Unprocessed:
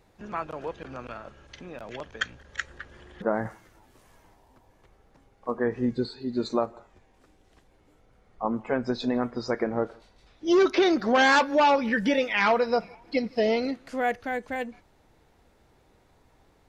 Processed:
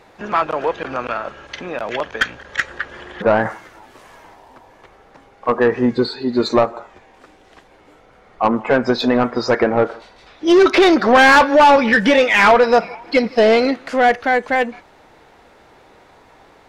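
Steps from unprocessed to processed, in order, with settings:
mid-hump overdrive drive 17 dB, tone 2,400 Hz, clips at −11 dBFS
level +8 dB

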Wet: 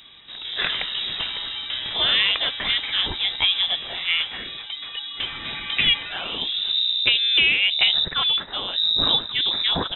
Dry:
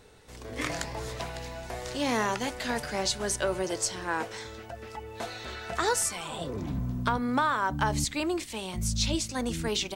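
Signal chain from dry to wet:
voice inversion scrambler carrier 3,800 Hz
level +8 dB

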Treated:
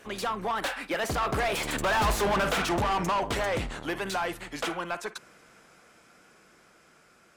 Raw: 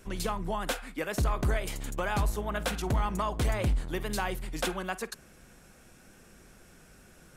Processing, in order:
source passing by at 0:02.16, 25 m/s, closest 4.9 metres
mid-hump overdrive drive 34 dB, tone 2,800 Hz, clips at −20.5 dBFS
level +2.5 dB

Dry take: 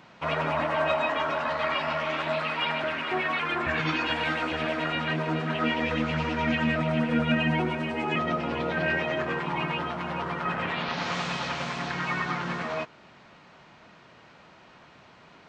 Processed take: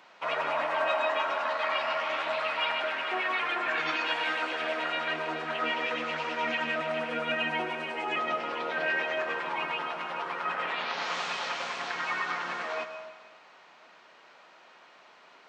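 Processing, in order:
high-pass filter 490 Hz 12 dB per octave
on a send: convolution reverb RT60 1.5 s, pre-delay 107 ms, DRR 9 dB
on the sum: level −1.5 dB

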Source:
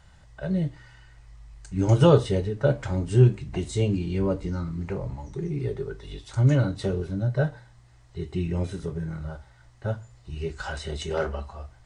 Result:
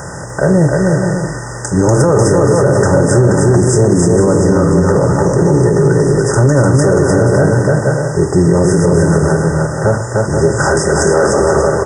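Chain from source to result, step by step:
compressor on every frequency bin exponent 0.6
high-pass filter 190 Hz 6 dB per octave
high-shelf EQ 7,100 Hz +10.5 dB
in parallel at −9.5 dB: hard clipping −22.5 dBFS, distortion −7 dB
on the sum: linear-phase brick-wall band-stop 2,000–4,900 Hz
on a send: bouncing-ball delay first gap 300 ms, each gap 0.6×, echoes 5
on the sum: boost into a limiter +14.5 dB
level −1 dB

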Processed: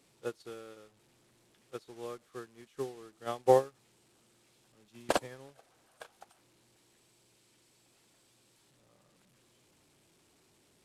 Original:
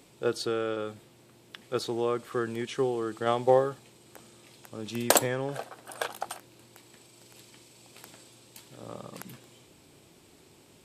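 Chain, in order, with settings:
linear delta modulator 64 kbit/s, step −33 dBFS
expander for the loud parts 2.5 to 1, over −37 dBFS

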